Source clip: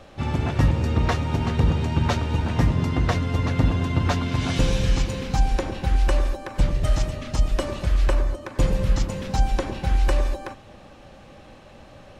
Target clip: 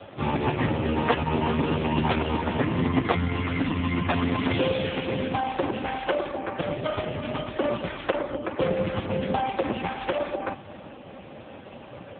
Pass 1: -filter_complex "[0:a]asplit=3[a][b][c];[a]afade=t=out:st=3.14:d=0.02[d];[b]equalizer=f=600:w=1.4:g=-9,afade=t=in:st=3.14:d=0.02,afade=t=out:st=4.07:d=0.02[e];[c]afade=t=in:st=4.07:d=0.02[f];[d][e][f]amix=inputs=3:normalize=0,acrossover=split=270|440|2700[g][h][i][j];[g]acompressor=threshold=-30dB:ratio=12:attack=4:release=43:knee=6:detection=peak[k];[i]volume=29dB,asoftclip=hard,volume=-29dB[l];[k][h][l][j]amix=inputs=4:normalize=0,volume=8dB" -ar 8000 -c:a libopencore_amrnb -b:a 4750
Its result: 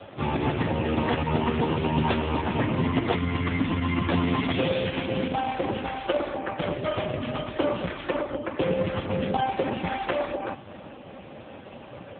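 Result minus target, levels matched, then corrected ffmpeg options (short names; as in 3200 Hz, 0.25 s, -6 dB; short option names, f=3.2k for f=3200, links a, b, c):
overloaded stage: distortion +8 dB
-filter_complex "[0:a]asplit=3[a][b][c];[a]afade=t=out:st=3.14:d=0.02[d];[b]equalizer=f=600:w=1.4:g=-9,afade=t=in:st=3.14:d=0.02,afade=t=out:st=4.07:d=0.02[e];[c]afade=t=in:st=4.07:d=0.02[f];[d][e][f]amix=inputs=3:normalize=0,acrossover=split=270|440|2700[g][h][i][j];[g]acompressor=threshold=-30dB:ratio=12:attack=4:release=43:knee=6:detection=peak[k];[i]volume=22dB,asoftclip=hard,volume=-22dB[l];[k][h][l][j]amix=inputs=4:normalize=0,volume=8dB" -ar 8000 -c:a libopencore_amrnb -b:a 4750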